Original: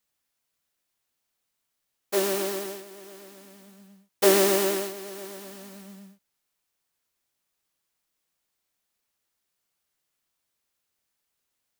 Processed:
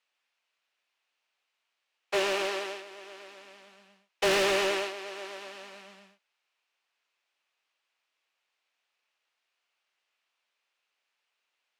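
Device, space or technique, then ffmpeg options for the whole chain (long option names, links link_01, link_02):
megaphone: -af "highpass=600,lowpass=3900,equalizer=frequency=2600:width_type=o:width=0.46:gain=6,asoftclip=type=hard:threshold=-25.5dB,volume=4dB"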